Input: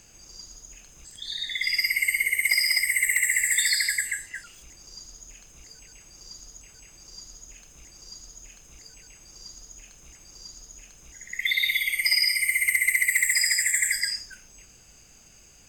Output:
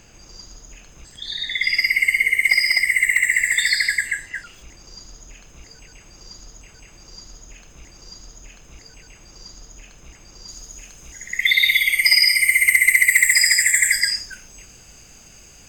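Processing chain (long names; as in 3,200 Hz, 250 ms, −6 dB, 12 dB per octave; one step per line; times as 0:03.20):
parametric band 11,000 Hz −15 dB 1.5 octaves, from 0:10.48 −3 dB
level +8.5 dB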